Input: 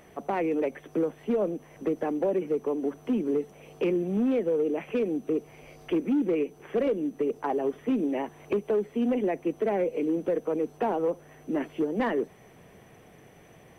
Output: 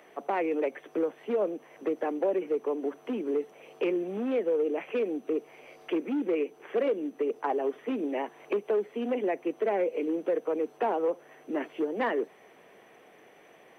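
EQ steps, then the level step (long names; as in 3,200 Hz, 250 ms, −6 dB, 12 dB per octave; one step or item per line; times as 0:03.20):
three-way crossover with the lows and the highs turned down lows −24 dB, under 270 Hz, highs −15 dB, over 3,400 Hz
high-shelf EQ 4,000 Hz +9.5 dB
0.0 dB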